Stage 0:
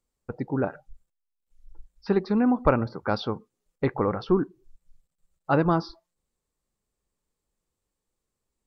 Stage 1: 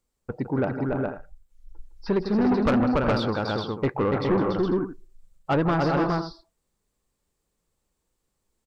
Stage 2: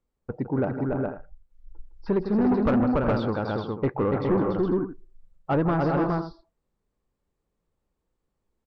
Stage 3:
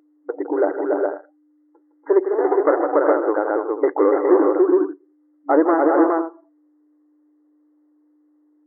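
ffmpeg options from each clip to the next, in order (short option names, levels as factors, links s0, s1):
-filter_complex "[0:a]asplit=2[s0][s1];[s1]aecho=0:1:160|286|367|414|496:0.251|0.631|0.224|0.596|0.168[s2];[s0][s2]amix=inputs=2:normalize=0,asoftclip=type=tanh:threshold=0.106,volume=1.41"
-af "lowpass=f=1300:p=1"
-af "aeval=exprs='val(0)+0.00224*(sin(2*PI*60*n/s)+sin(2*PI*2*60*n/s)/2+sin(2*PI*3*60*n/s)/3+sin(2*PI*4*60*n/s)/4+sin(2*PI*5*60*n/s)/5)':c=same,tiltshelf=f=970:g=3,afftfilt=real='re*between(b*sr/4096,290,2100)':imag='im*between(b*sr/4096,290,2100)':win_size=4096:overlap=0.75,volume=2.51"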